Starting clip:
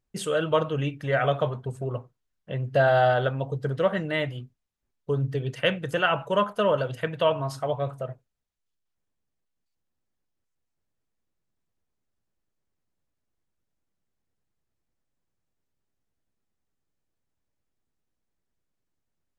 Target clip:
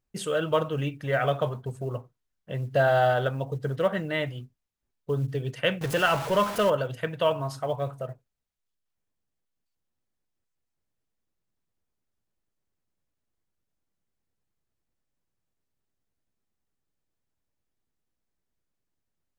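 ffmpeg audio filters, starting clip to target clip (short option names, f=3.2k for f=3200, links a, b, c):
-filter_complex "[0:a]asettb=1/sr,asplit=3[a][b][c];[a]atrim=end=5.814[d];[b]atrim=start=5.81:end=6.7,asetpts=PTS-STARTPTS,afade=t=in:d=0.004:c=qsin,afade=t=out:st=0.886:d=0.004:c=qsin,aeval=exprs='val(0)+0.5*0.0398*sgn(val(0))':c=same[e];[c]atrim=start=6.696[f];[d][e]acrossfade=d=0.004:c1=hsin:c2=qsin[g];[g][f]acrossfade=d=0.004:c1=qsin:c2=hsin,acrusher=bits=9:mode=log:mix=0:aa=0.000001,volume=-1.5dB"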